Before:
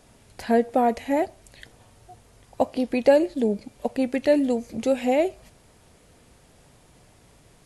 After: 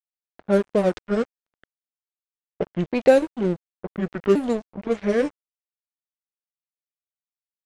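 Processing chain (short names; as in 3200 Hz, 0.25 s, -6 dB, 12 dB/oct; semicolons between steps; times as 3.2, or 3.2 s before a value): repeated pitch sweeps -7 st, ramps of 1.451 s; crossover distortion -33 dBFS; low-pass opened by the level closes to 1200 Hz, open at -17.5 dBFS; gain +3 dB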